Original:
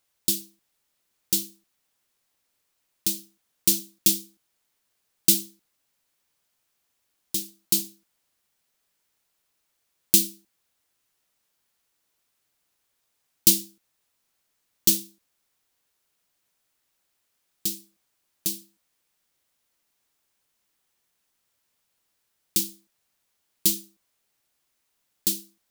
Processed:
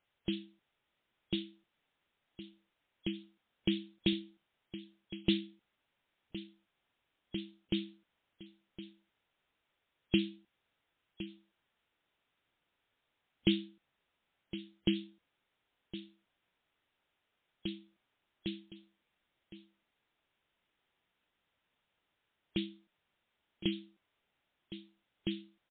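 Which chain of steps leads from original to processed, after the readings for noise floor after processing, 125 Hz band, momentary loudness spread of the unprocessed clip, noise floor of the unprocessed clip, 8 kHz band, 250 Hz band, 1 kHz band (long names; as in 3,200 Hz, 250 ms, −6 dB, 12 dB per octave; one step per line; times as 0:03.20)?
−84 dBFS, −0.5 dB, 13 LU, −75 dBFS, below −40 dB, −0.5 dB, can't be measured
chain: notch filter 1,100 Hz, Q 24
single-tap delay 1,063 ms −13.5 dB
MP3 24 kbit/s 8,000 Hz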